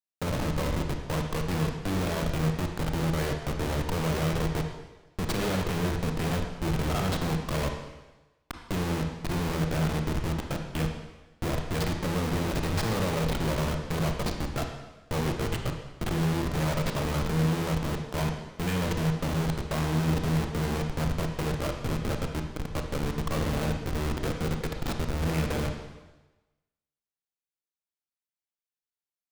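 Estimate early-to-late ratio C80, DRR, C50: 7.0 dB, 3.5 dB, 5.5 dB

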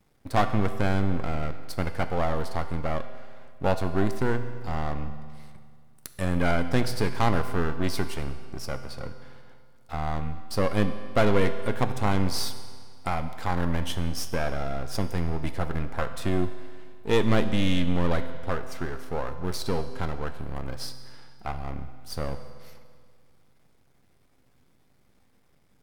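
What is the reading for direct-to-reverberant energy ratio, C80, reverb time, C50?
9.0 dB, 11.5 dB, 2.0 s, 10.5 dB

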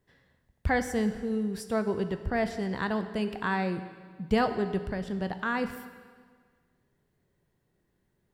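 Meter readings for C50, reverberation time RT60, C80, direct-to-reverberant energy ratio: 10.5 dB, 1.7 s, 11.5 dB, 9.0 dB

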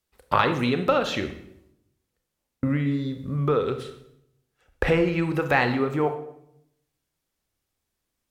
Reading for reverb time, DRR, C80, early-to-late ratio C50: 0.75 s, 7.5 dB, 12.5 dB, 10.0 dB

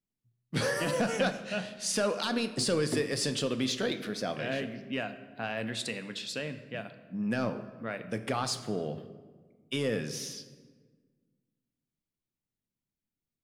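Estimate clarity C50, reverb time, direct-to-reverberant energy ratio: 11.5 dB, 1.5 s, 8.5 dB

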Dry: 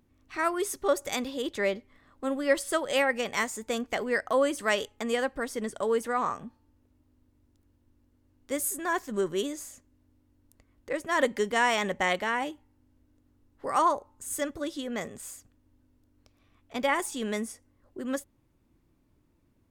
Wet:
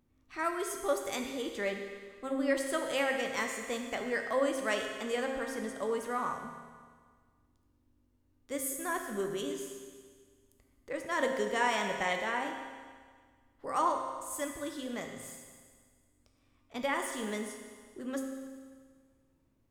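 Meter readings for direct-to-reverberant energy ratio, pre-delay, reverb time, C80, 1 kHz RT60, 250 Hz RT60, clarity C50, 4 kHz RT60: 2.5 dB, 8 ms, 1.7 s, 5.5 dB, 1.7 s, 1.7 s, 4.5 dB, 1.7 s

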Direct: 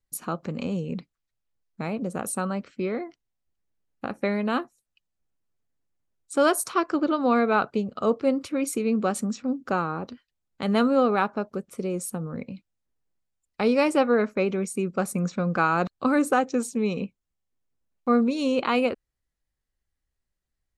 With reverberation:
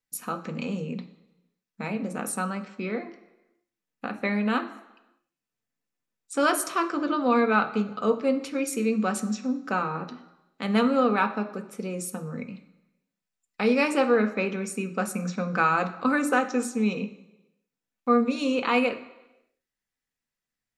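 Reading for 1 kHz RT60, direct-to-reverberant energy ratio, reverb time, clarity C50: 1.0 s, 5.5 dB, 1.0 s, 12.5 dB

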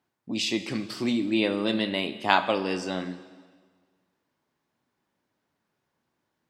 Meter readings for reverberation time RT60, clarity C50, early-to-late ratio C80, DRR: 1.6 s, 12.5 dB, 14.0 dB, 11.0 dB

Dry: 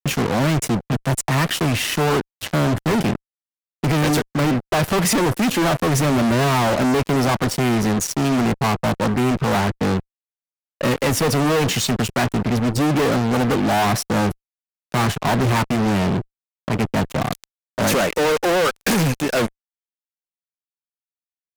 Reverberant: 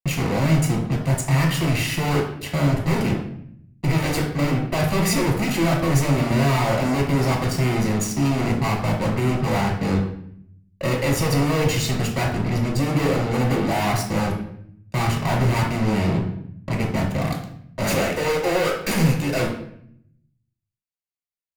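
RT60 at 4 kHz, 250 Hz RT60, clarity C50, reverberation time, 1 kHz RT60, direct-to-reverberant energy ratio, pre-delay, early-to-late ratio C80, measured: 0.55 s, 1.0 s, 5.5 dB, 0.65 s, 0.60 s, 0.5 dB, 3 ms, 9.5 dB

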